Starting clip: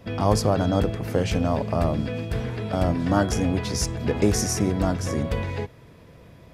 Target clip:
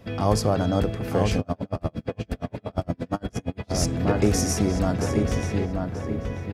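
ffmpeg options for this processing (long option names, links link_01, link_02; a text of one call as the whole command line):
ffmpeg -i in.wav -filter_complex "[0:a]bandreject=frequency=970:width=21,asplit=2[link_01][link_02];[link_02]adelay=935,lowpass=frequency=2100:poles=1,volume=-4dB,asplit=2[link_03][link_04];[link_04]adelay=935,lowpass=frequency=2100:poles=1,volume=0.43,asplit=2[link_05][link_06];[link_06]adelay=935,lowpass=frequency=2100:poles=1,volume=0.43,asplit=2[link_07][link_08];[link_08]adelay=935,lowpass=frequency=2100:poles=1,volume=0.43,asplit=2[link_09][link_10];[link_10]adelay=935,lowpass=frequency=2100:poles=1,volume=0.43[link_11];[link_01][link_03][link_05][link_07][link_09][link_11]amix=inputs=6:normalize=0,asplit=3[link_12][link_13][link_14];[link_12]afade=type=out:start_time=1.38:duration=0.02[link_15];[link_13]aeval=exprs='val(0)*pow(10,-39*(0.5-0.5*cos(2*PI*8.6*n/s))/20)':channel_layout=same,afade=type=in:start_time=1.38:duration=0.02,afade=type=out:start_time=3.72:duration=0.02[link_16];[link_14]afade=type=in:start_time=3.72:duration=0.02[link_17];[link_15][link_16][link_17]amix=inputs=3:normalize=0,volume=-1dB" out.wav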